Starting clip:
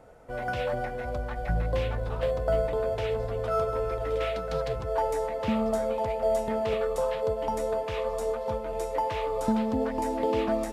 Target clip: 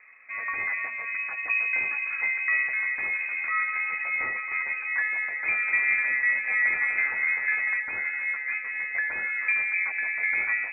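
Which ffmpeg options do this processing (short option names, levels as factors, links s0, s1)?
-filter_complex "[0:a]lowpass=f=2200:t=q:w=0.5098,lowpass=f=2200:t=q:w=0.6013,lowpass=f=2200:t=q:w=0.9,lowpass=f=2200:t=q:w=2.563,afreqshift=-2600,asettb=1/sr,asplit=3[s0][s1][s2];[s0]atrim=end=5.214[s3];[s1]atrim=start=5.21:end=7.8,asetpts=PTS-STARTPTS,afade=t=in:d=0.004:c=qsin,afade=t=out:st=2.586:d=0.004:c=qsin,aecho=1:1:250|400|490|544|576.4:0.631|0.398|0.251|0.158|0.1,atrim=end_sample=114219[s4];[s2]atrim=start=7.796[s5];[s3][s4]acrossfade=d=0.004:c1=hsin:c2=qsin[s6];[s6][s5]acrossfade=d=0.004:c1=qsin:c2=hsin"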